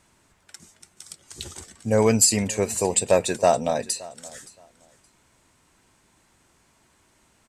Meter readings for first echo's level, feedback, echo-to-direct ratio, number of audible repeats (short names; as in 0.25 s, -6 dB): -21.0 dB, 20%, -21.0 dB, 2